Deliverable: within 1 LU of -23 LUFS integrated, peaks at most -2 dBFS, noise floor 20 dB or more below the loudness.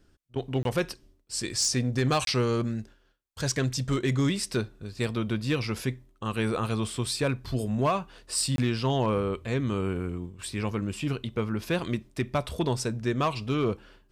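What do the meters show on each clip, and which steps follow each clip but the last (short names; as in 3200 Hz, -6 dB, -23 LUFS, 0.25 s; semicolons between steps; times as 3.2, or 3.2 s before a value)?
clipped 0.4%; flat tops at -18.5 dBFS; dropouts 3; longest dropout 22 ms; loudness -29.0 LUFS; peak -18.5 dBFS; loudness target -23.0 LUFS
-> clip repair -18.5 dBFS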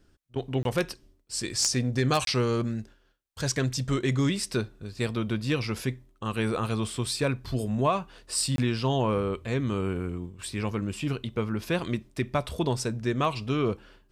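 clipped 0.0%; dropouts 3; longest dropout 22 ms
-> interpolate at 0.63/2.25/8.56, 22 ms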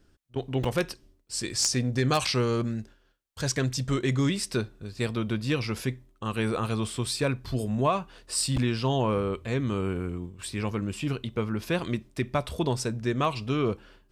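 dropouts 0; loudness -29.0 LUFS; peak -9.5 dBFS; loudness target -23.0 LUFS
-> gain +6 dB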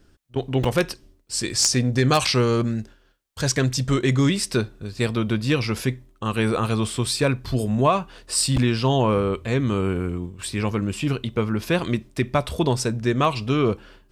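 loudness -23.0 LUFS; peak -3.5 dBFS; noise floor -58 dBFS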